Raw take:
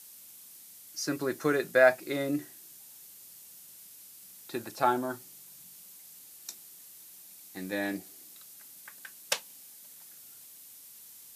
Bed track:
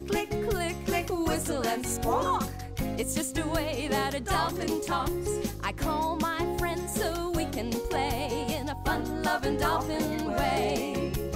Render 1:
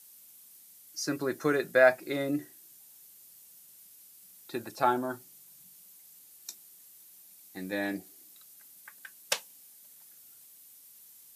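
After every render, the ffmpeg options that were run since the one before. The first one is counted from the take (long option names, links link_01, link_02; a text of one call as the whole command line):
ffmpeg -i in.wav -af "afftdn=noise_reduction=6:noise_floor=-52" out.wav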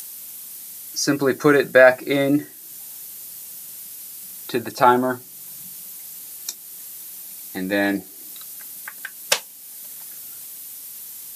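ffmpeg -i in.wav -filter_complex "[0:a]asplit=2[link_01][link_02];[link_02]acompressor=mode=upward:threshold=-37dB:ratio=2.5,volume=3dB[link_03];[link_01][link_03]amix=inputs=2:normalize=0,alimiter=level_in=4.5dB:limit=-1dB:release=50:level=0:latency=1" out.wav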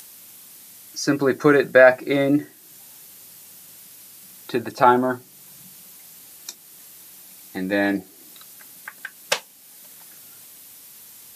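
ffmpeg -i in.wav -af "highshelf=frequency=5200:gain=-9.5" out.wav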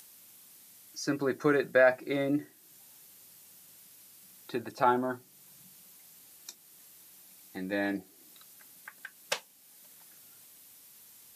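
ffmpeg -i in.wav -af "volume=-10.5dB" out.wav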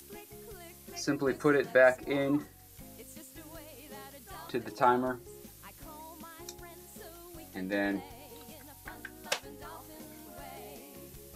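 ffmpeg -i in.wav -i bed.wav -filter_complex "[1:a]volume=-20dB[link_01];[0:a][link_01]amix=inputs=2:normalize=0" out.wav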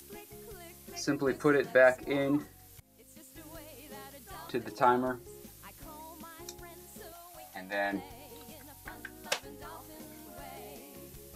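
ffmpeg -i in.wav -filter_complex "[0:a]asettb=1/sr,asplit=3[link_01][link_02][link_03];[link_01]atrim=end=7.124[link_04];[link_02]atrim=start=7.12:end=7.93,asetpts=PTS-STARTPTS,afade=type=in:duration=0.004:curve=qsin,afade=type=out:start_time=0.806:duration=0.004:curve=qsin,lowshelf=frequency=540:width_type=q:width=3:gain=-8.5[link_05];[link_03]atrim=start=7.926[link_06];[link_04][link_05]acrossfade=duration=0.004:curve1=hsin:curve2=qsin[link_07];[link_07][link_06]acrossfade=duration=0.004:curve1=qsin:curve2=hsin,asplit=2[link_08][link_09];[link_08]atrim=end=2.8,asetpts=PTS-STARTPTS,afade=type=out:start_time=2.796:duration=0.004:curve=hsin:silence=0.0841395[link_10];[link_09]atrim=start=2.8,asetpts=PTS-STARTPTS,afade=type=in:duration=0.68:silence=0.0841395[link_11];[link_10][link_11]concat=n=2:v=0:a=1" out.wav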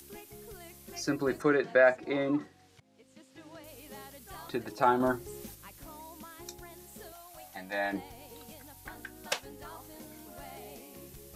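ffmpeg -i in.wav -filter_complex "[0:a]asettb=1/sr,asplit=3[link_01][link_02][link_03];[link_01]atrim=end=1.424[link_04];[link_02]atrim=start=1.42:end=3.64,asetpts=PTS-STARTPTS,afade=type=in:duration=0.004:curve=qsin,afade=type=out:start_time=2.216:duration=0.004:curve=qsin,highpass=140,lowpass=4700[link_05];[link_03]atrim=start=3.636[link_06];[link_04][link_05]acrossfade=duration=0.004:curve1=hsin:curve2=qsin[link_07];[link_07][link_06]acrossfade=duration=0.004:curve1=qsin:curve2=hsin,asettb=1/sr,asplit=3[link_08][link_09][link_10];[link_08]atrim=end=5.004[link_11];[link_09]atrim=start=5:end=5.55,asetpts=PTS-STARTPTS,afade=type=in:duration=0.004:curve=qsin,afade=type=out:start_time=0.546:duration=0.004:curve=qsin,acontrast=29[link_12];[link_10]atrim=start=5.546[link_13];[link_11][link_12]acrossfade=duration=0.004:curve1=hsin:curve2=qsin[link_14];[link_14][link_13]acrossfade=duration=0.004:curve1=qsin:curve2=hsin" out.wav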